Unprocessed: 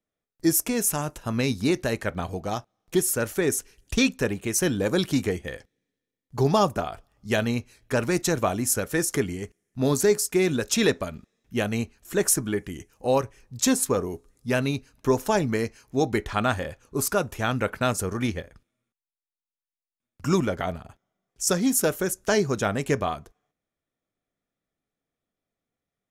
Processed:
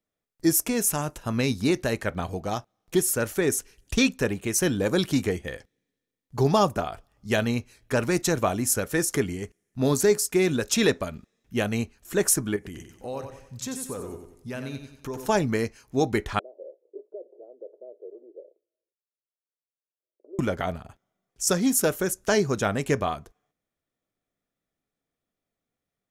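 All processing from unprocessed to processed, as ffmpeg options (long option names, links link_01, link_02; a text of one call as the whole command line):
ffmpeg -i in.wav -filter_complex "[0:a]asettb=1/sr,asplit=3[link_01][link_02][link_03];[link_01]atrim=end=12.564[link_04];[link_02]atrim=start=12.56:end=15.29,asetpts=PTS-STARTPTS,afade=type=in:duration=0.004:curve=qsin,afade=type=out:start_time=2.726:duration=0.004:curve=qsin,acompressor=threshold=-36dB:ratio=2.5:attack=3.2:release=140:knee=1:detection=peak,aecho=1:1:92|184|276|368|460:0.422|0.173|0.0709|0.0291|0.0119,atrim=end_sample=120393[link_05];[link_03]atrim=start=15.286[link_06];[link_04][link_05]acrossfade=duration=0.004:curve1=hsin:curve2=qsin[link_07];[link_07][link_06]acrossfade=duration=0.004:curve1=qsin:curve2=hsin,asettb=1/sr,asplit=3[link_08][link_09][link_10];[link_08]atrim=end=16.394[link_11];[link_09]atrim=start=16.39:end=20.39,asetpts=PTS-STARTPTS,afade=type=in:duration=0.004:curve=qsin,afade=type=out:start_time=3.996:duration=0.004:curve=qsin,acompressor=threshold=-34dB:ratio=4:attack=3.2:release=140:knee=1:detection=peak,asuperpass=centerf=470:order=8:qfactor=1.7[link_12];[link_10]atrim=start=20.386[link_13];[link_11][link_12]acrossfade=duration=0.004:curve1=hsin:curve2=qsin[link_14];[link_14][link_13]acrossfade=duration=0.004:curve1=qsin:curve2=hsin" out.wav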